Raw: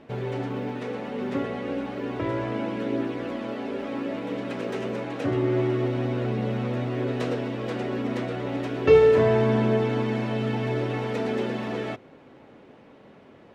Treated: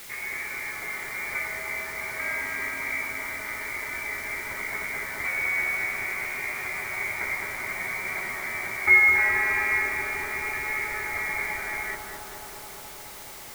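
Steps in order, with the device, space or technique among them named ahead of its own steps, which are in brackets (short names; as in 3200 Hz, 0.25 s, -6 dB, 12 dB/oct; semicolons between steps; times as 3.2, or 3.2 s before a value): scrambled radio voice (BPF 370–3000 Hz; inverted band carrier 2600 Hz; white noise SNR 14 dB); analogue delay 0.211 s, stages 2048, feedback 83%, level -3.5 dB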